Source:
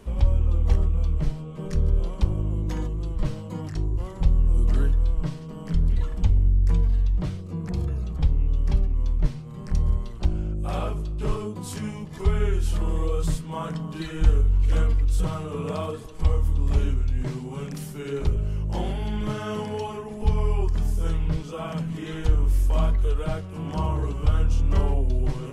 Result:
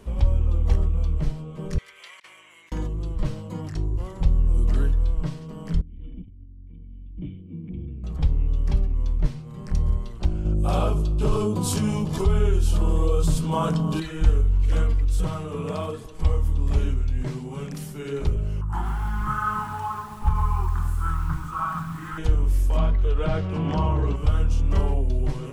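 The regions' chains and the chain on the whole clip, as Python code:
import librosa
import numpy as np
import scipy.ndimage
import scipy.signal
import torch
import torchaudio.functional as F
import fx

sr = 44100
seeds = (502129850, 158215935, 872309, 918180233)

y = fx.chain(x, sr, fx.highpass_res(hz=2000.0, q=5.9),
    fx.over_compress(threshold_db=-46.0, ratio=-0.5), at=(1.78, 2.72))
y = fx.chain(y, sr, fx.over_compress(threshold_db=-23.0, ratio=-0.5),
    fx.formant_cascade(vowel='i'), at=(5.81, 8.04))
y = fx.chain(y, sr, fx.peak_eq(hz=1900.0, db=-11.0, octaves=0.47),
    fx.env_flatten(amount_pct=50), at=(10.45, 14.0))
y = fx.chain(y, sr, fx.curve_eq(hz=(120.0, 210.0, 360.0, 530.0, 840.0, 1300.0, 2200.0, 3200.0, 4900.0, 7700.0), db=(0, -7, -8, -27, 4, 15, -6, -11, -18, -2)),
    fx.echo_crushed(ms=134, feedback_pct=55, bits=7, wet_db=-10.5), at=(18.61, 22.18))
y = fx.chain(y, sr, fx.lowpass(hz=4600.0, slope=12),
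    fx.env_flatten(amount_pct=50), at=(22.77, 24.16))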